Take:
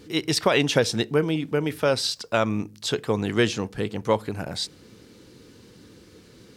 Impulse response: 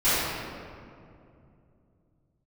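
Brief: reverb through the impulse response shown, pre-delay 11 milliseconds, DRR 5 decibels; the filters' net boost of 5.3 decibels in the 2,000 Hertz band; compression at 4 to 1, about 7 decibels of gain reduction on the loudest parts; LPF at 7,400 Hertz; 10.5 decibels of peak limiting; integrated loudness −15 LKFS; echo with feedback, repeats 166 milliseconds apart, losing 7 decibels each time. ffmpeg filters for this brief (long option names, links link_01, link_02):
-filter_complex "[0:a]lowpass=7400,equalizer=frequency=2000:width_type=o:gain=7,acompressor=threshold=-22dB:ratio=4,alimiter=limit=-18dB:level=0:latency=1,aecho=1:1:166|332|498|664|830:0.447|0.201|0.0905|0.0407|0.0183,asplit=2[link_01][link_02];[1:a]atrim=start_sample=2205,adelay=11[link_03];[link_02][link_03]afir=irnorm=-1:irlink=0,volume=-23dB[link_04];[link_01][link_04]amix=inputs=2:normalize=0,volume=13dB"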